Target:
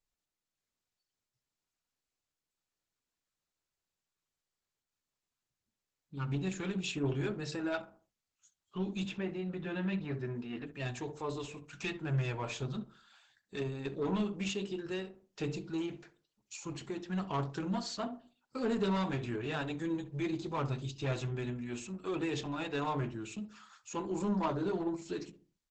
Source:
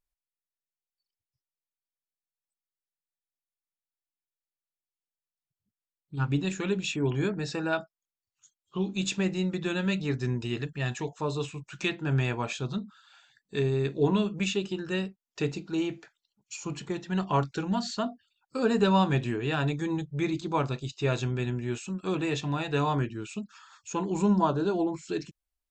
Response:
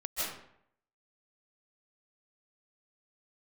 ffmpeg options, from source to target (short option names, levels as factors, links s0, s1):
-filter_complex "[0:a]bandreject=f=50:t=h:w=6,bandreject=f=100:t=h:w=6,bandreject=f=150:t=h:w=6,bandreject=f=200:t=h:w=6,bandreject=f=250:t=h:w=6,bandreject=f=300:t=h:w=6,bandreject=f=350:t=h:w=6,bandreject=f=400:t=h:w=6,bandreject=f=450:t=h:w=6,asoftclip=type=tanh:threshold=0.0708,flanger=delay=2.2:depth=9.2:regen=-43:speed=0.18:shape=triangular,asettb=1/sr,asplit=3[s0][s1][s2];[s0]atrim=end=9.054[s3];[s1]atrim=start=9.05:end=10.67,asetpts=PTS-STARTPTS,afade=t=in:d=0.004:c=qsin,afade=t=out:st=1.616:d=0.004:c=qsin,highpass=120,lowpass=2500[s4];[s2]atrim=start=10.666[s5];[s3][s4]acrossfade=d=0.004:c1=hsin:c2=qsin[s6];[s6][s5]acrossfade=d=0.004:c1=qsin:c2=hsin,asplit=2[s7][s8];[s8]adelay=66,lowpass=f=1200:p=1,volume=0.251,asplit=2[s9][s10];[s10]adelay=66,lowpass=f=1200:p=1,volume=0.39,asplit=2[s11][s12];[s12]adelay=66,lowpass=f=1200:p=1,volume=0.39,asplit=2[s13][s14];[s14]adelay=66,lowpass=f=1200:p=1,volume=0.39[s15];[s7][s9][s11][s13][s15]amix=inputs=5:normalize=0" -ar 48000 -c:a libopus -b:a 12k